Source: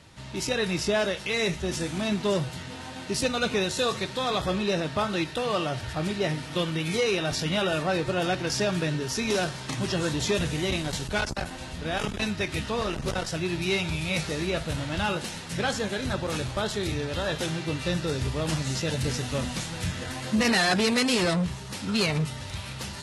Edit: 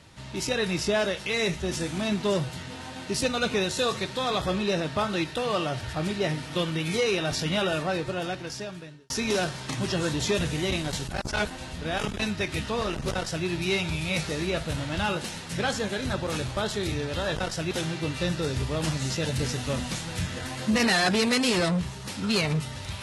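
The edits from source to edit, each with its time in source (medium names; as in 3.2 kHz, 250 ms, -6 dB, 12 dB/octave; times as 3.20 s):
7.63–9.10 s: fade out
11.11–11.47 s: reverse
13.11–13.46 s: copy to 17.36 s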